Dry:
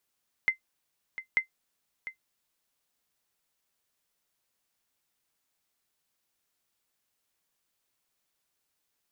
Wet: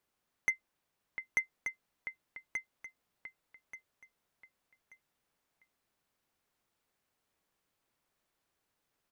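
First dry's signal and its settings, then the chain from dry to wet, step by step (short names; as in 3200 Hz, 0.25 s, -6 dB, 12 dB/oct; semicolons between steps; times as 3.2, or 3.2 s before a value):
sonar ping 2070 Hz, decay 0.11 s, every 0.89 s, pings 2, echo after 0.70 s, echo -13.5 dB -15 dBFS
high shelf 2600 Hz -11.5 dB; in parallel at -5 dB: wavefolder -29.5 dBFS; on the sum: feedback echo 1.182 s, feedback 28%, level -7 dB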